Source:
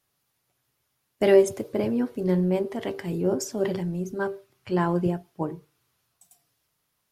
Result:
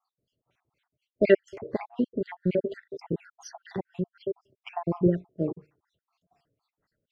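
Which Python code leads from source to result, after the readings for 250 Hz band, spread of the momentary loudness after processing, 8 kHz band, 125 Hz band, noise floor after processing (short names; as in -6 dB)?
-3.5 dB, 17 LU, -14.0 dB, -4.0 dB, under -85 dBFS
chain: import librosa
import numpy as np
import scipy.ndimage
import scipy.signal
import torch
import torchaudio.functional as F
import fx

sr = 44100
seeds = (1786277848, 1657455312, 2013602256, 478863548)

y = fx.spec_dropout(x, sr, seeds[0], share_pct=64)
y = fx.filter_lfo_lowpass(y, sr, shape='sine', hz=4.1, low_hz=430.0, high_hz=4000.0, q=1.5)
y = F.gain(torch.from_numpy(y), 1.5).numpy()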